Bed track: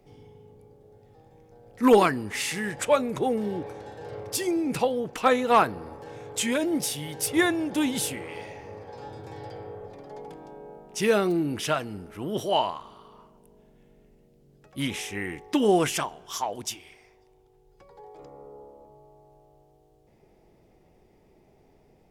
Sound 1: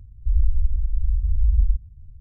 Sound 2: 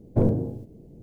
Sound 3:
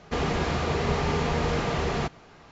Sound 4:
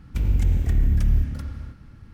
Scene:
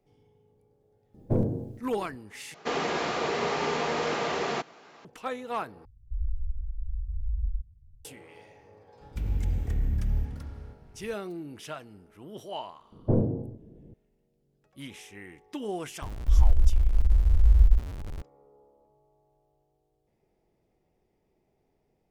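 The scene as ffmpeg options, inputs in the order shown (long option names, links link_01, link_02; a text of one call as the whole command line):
ffmpeg -i bed.wav -i cue0.wav -i cue1.wav -i cue2.wav -i cue3.wav -filter_complex "[2:a]asplit=2[link_01][link_02];[1:a]asplit=2[link_03][link_04];[0:a]volume=-13dB[link_05];[3:a]highpass=300[link_06];[link_02]lowpass=1300[link_07];[link_04]aeval=exprs='val(0)+0.5*0.0224*sgn(val(0))':channel_layout=same[link_08];[link_05]asplit=3[link_09][link_10][link_11];[link_09]atrim=end=2.544[link_12];[link_06]atrim=end=2.51[link_13];[link_10]atrim=start=5.046:end=5.854[link_14];[link_03]atrim=end=2.2,asetpts=PTS-STARTPTS,volume=-12dB[link_15];[link_11]atrim=start=8.046[link_16];[link_01]atrim=end=1.02,asetpts=PTS-STARTPTS,volume=-4.5dB,afade=type=in:duration=0.004:curve=hsin,afade=type=out:start_time=1.016:duration=0.004:curve=hsin,adelay=1140[link_17];[4:a]atrim=end=2.13,asetpts=PTS-STARTPTS,volume=-8dB,afade=type=in:duration=0.004:curve=hsin,afade=type=out:start_time=2.126:duration=0.004:curve=hsin,adelay=9010[link_18];[link_07]atrim=end=1.02,asetpts=PTS-STARTPTS,volume=-3dB,afade=type=in:duration=0.004:curve=hsin,afade=type=out:start_time=1.016:duration=0.004:curve=hsin,adelay=12920[link_19];[link_08]atrim=end=2.2,asetpts=PTS-STARTPTS,volume=-0.5dB,afade=type=in:duration=0.004:curve=hsin,afade=type=out:start_time=2.196:duration=0.004:curve=hsin,adelay=16020[link_20];[link_12][link_13]acrossfade=duration=0.004:curve1=hsin:curve2=hsin[link_21];[link_21][link_14]acrossfade=duration=0.004:curve1=hsin:curve2=hsin[link_22];[link_22][link_15]acrossfade=duration=0.004:curve1=hsin:curve2=hsin[link_23];[link_23][link_16]acrossfade=duration=0.004:curve1=hsin:curve2=hsin[link_24];[link_24][link_17][link_18][link_19][link_20]amix=inputs=5:normalize=0" out.wav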